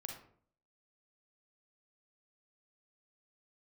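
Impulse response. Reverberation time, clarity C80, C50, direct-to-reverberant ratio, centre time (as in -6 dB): 0.55 s, 9.0 dB, 3.5 dB, 1.5 dB, 31 ms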